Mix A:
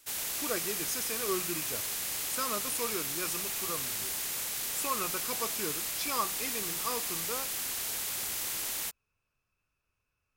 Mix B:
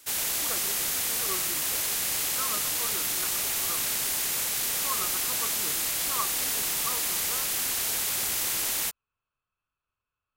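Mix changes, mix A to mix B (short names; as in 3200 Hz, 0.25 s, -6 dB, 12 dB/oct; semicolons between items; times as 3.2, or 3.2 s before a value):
speech: add rippled Chebyshev low-pass 4500 Hz, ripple 9 dB; background +6.5 dB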